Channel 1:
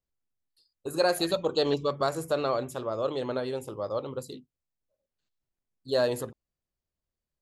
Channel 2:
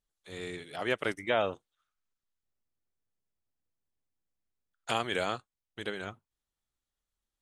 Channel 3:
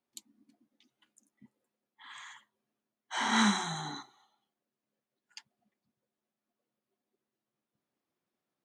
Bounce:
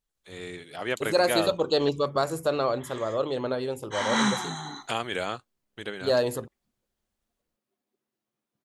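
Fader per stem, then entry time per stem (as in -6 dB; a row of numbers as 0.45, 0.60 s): +2.0, +1.0, +2.0 dB; 0.15, 0.00, 0.80 s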